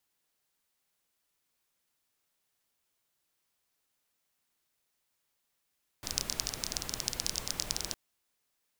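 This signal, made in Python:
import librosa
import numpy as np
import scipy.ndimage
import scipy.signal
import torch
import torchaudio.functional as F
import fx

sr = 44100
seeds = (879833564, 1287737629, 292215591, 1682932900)

y = fx.rain(sr, seeds[0], length_s=1.91, drops_per_s=18.0, hz=5400.0, bed_db=-5)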